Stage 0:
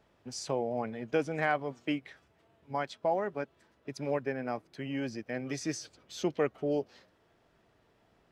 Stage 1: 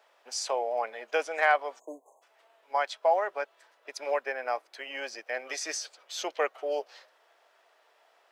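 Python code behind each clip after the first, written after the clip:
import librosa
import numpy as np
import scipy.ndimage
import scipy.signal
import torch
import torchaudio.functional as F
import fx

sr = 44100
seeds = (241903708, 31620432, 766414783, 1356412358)

y = scipy.signal.sosfilt(scipy.signal.butter(4, 570.0, 'highpass', fs=sr, output='sos'), x)
y = fx.spec_erase(y, sr, start_s=1.79, length_s=0.43, low_hz=1100.0, high_hz=6200.0)
y = y * librosa.db_to_amplitude(7.0)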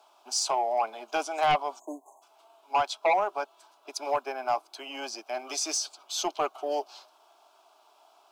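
y = fx.fixed_phaser(x, sr, hz=500.0, stages=6)
y = fx.fold_sine(y, sr, drive_db=7, ceiling_db=-15.0)
y = y * librosa.db_to_amplitude(-3.5)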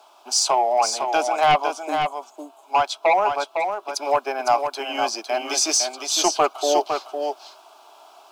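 y = fx.rider(x, sr, range_db=3, speed_s=2.0)
y = y + 10.0 ** (-6.0 / 20.0) * np.pad(y, (int(507 * sr / 1000.0), 0))[:len(y)]
y = y * librosa.db_to_amplitude(8.0)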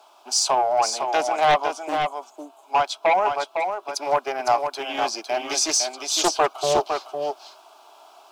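y = fx.doppler_dist(x, sr, depth_ms=0.3)
y = y * librosa.db_to_amplitude(-1.0)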